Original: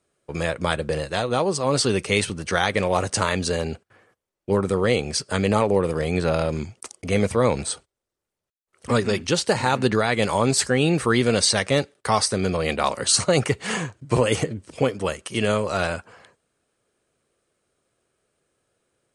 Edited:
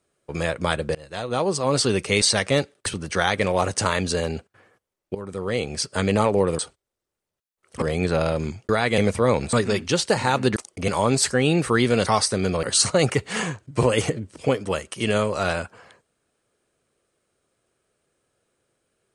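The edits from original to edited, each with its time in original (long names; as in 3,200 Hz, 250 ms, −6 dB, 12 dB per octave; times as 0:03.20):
0:00.95–0:01.48: fade in, from −23.5 dB
0:04.51–0:05.28: fade in linear, from −17.5 dB
0:06.82–0:07.14: swap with 0:09.95–0:10.24
0:07.69–0:08.92: move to 0:05.95
0:11.42–0:12.06: move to 0:02.22
0:12.63–0:12.97: remove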